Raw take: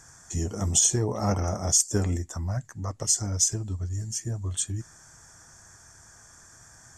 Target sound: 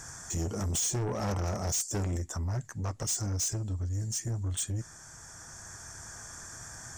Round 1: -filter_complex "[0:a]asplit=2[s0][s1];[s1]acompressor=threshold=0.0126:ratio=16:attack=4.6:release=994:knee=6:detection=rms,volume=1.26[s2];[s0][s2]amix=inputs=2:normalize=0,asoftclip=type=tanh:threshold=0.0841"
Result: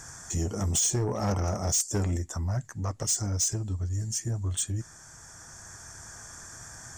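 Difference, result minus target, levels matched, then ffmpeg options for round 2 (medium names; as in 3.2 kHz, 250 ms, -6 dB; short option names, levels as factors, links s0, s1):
saturation: distortion -4 dB
-filter_complex "[0:a]asplit=2[s0][s1];[s1]acompressor=threshold=0.0126:ratio=16:attack=4.6:release=994:knee=6:detection=rms,volume=1.26[s2];[s0][s2]amix=inputs=2:normalize=0,asoftclip=type=tanh:threshold=0.0398"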